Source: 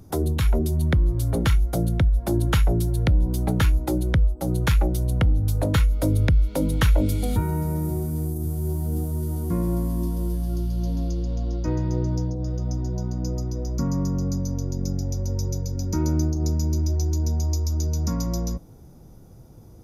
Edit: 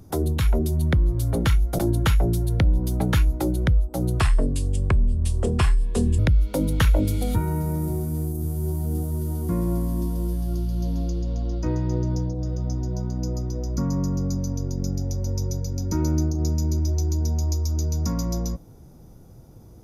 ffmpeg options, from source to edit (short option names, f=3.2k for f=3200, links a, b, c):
-filter_complex "[0:a]asplit=4[a][b][c][d];[a]atrim=end=1.792[e];[b]atrim=start=2.258:end=4.674[f];[c]atrim=start=4.67:end=6.2,asetpts=PTS-STARTPTS,asetrate=33957,aresample=44100,atrim=end_sample=87627,asetpts=PTS-STARTPTS[g];[d]atrim=start=6.196[h];[e][f]acrossfade=d=0.004:c1=hsin:c2=hsin[i];[i][g]acrossfade=d=0.004:c1=hsin:c2=hsin[j];[j][h]acrossfade=d=0.004:c1=hsin:c2=hsin"